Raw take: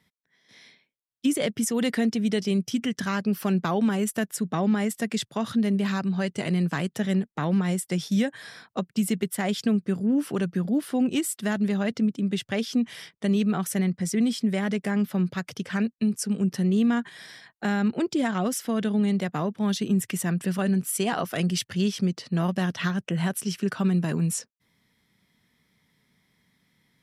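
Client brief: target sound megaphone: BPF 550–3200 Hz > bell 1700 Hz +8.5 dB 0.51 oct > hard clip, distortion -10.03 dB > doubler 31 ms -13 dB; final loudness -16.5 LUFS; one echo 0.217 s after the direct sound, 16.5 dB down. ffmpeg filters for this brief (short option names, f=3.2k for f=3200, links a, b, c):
-filter_complex "[0:a]highpass=550,lowpass=3.2k,equalizer=f=1.7k:t=o:w=0.51:g=8.5,aecho=1:1:217:0.15,asoftclip=type=hard:threshold=-26dB,asplit=2[a][b];[b]adelay=31,volume=-13dB[c];[a][c]amix=inputs=2:normalize=0,volume=17.5dB"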